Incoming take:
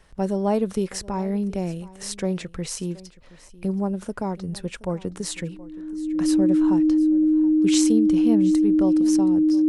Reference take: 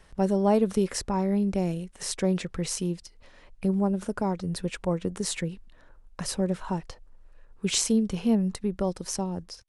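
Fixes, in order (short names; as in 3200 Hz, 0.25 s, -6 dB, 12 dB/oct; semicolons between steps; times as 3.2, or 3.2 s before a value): notch 310 Hz, Q 30; inverse comb 0.723 s -20 dB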